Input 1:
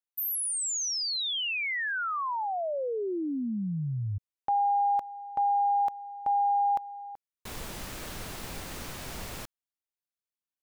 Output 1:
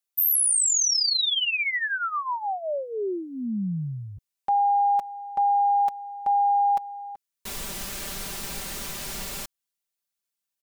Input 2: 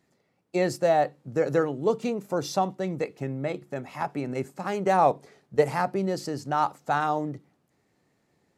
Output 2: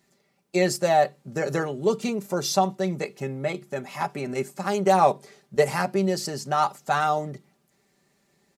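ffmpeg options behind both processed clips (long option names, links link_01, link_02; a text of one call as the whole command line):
ffmpeg -i in.wav -af "highshelf=frequency=2700:gain=8.5,aecho=1:1:5.1:0.61" out.wav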